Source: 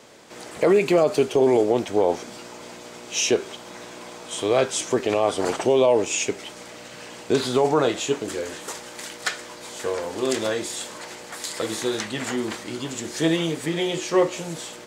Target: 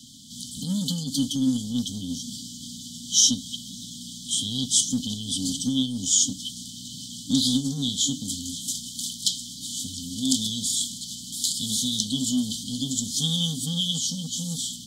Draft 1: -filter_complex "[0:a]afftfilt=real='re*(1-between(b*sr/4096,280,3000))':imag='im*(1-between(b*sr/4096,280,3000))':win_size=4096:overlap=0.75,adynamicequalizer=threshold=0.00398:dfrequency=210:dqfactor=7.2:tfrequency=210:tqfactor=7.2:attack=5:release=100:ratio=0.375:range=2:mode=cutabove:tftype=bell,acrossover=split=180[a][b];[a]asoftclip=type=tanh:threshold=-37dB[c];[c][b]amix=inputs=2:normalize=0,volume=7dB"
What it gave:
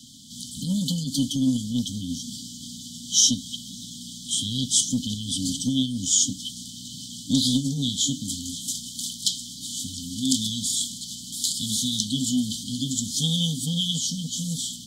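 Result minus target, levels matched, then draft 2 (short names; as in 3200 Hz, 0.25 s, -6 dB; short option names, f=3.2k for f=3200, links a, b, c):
soft clip: distortion -7 dB
-filter_complex "[0:a]afftfilt=real='re*(1-between(b*sr/4096,280,3000))':imag='im*(1-between(b*sr/4096,280,3000))':win_size=4096:overlap=0.75,adynamicequalizer=threshold=0.00398:dfrequency=210:dqfactor=7.2:tfrequency=210:tqfactor=7.2:attack=5:release=100:ratio=0.375:range=2:mode=cutabove:tftype=bell,acrossover=split=180[a][b];[a]asoftclip=type=tanh:threshold=-45.5dB[c];[c][b]amix=inputs=2:normalize=0,volume=7dB"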